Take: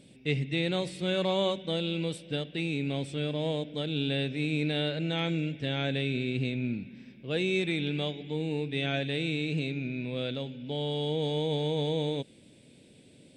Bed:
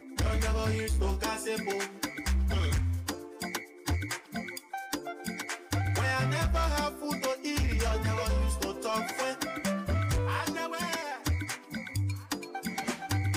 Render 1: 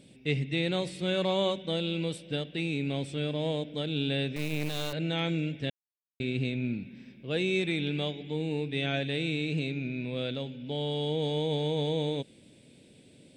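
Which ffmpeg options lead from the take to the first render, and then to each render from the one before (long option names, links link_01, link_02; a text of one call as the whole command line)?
ffmpeg -i in.wav -filter_complex "[0:a]asettb=1/sr,asplit=3[link_01][link_02][link_03];[link_01]atrim=end=4.364[link_04];[link_02]atrim=start=4.36:end=4.93,asetpts=PTS-STARTPTS,afade=type=in:duration=0.004:curve=qsin,afade=type=out:start_time=0.566:duration=0.004:curve=qsin,acrusher=bits=4:dc=4:mix=0:aa=0.000001[link_05];[link_03]atrim=start=4.926[link_06];[link_04][link_05]acrossfade=duration=0.004:curve1=hsin:curve2=qsin[link_07];[link_07][link_06]acrossfade=duration=0.004:curve1=qsin:curve2=hsin,asplit=3[link_08][link_09][link_10];[link_08]atrim=end=5.7,asetpts=PTS-STARTPTS,afade=type=out:start_time=5.696:duration=0.004:curve=hsin[link_11];[link_09]atrim=start=5.7:end=6.2,asetpts=PTS-STARTPTS,volume=0[link_12];[link_10]atrim=start=6.2,asetpts=PTS-STARTPTS,afade=type=in:duration=0.004:curve=hsin[link_13];[link_11][link_12][link_13]concat=n=3:v=0:a=1" out.wav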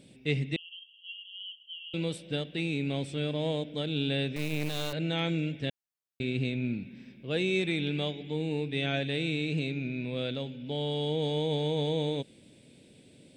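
ffmpeg -i in.wav -filter_complex "[0:a]asettb=1/sr,asplit=3[link_01][link_02][link_03];[link_01]atrim=end=0.564[link_04];[link_02]atrim=start=0.56:end=1.94,asetpts=PTS-STARTPTS,afade=type=in:duration=0.004:curve=qsin,afade=type=out:start_time=1.376:duration=0.004:curve=qsin,asuperpass=centerf=3000:order=20:qfactor=5.2[link_05];[link_03]atrim=start=1.936[link_06];[link_04][link_05]acrossfade=duration=0.004:curve1=hsin:curve2=qsin[link_07];[link_07][link_06]acrossfade=duration=0.004:curve1=qsin:curve2=hsin" out.wav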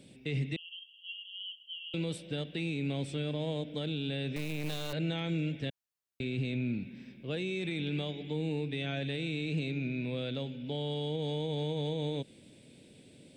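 ffmpeg -i in.wav -filter_complex "[0:a]alimiter=limit=-24dB:level=0:latency=1:release=21,acrossover=split=230[link_01][link_02];[link_02]acompressor=threshold=-35dB:ratio=2.5[link_03];[link_01][link_03]amix=inputs=2:normalize=0" out.wav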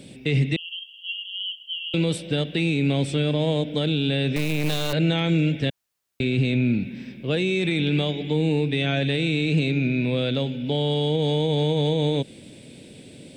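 ffmpeg -i in.wav -af "volume=12dB" out.wav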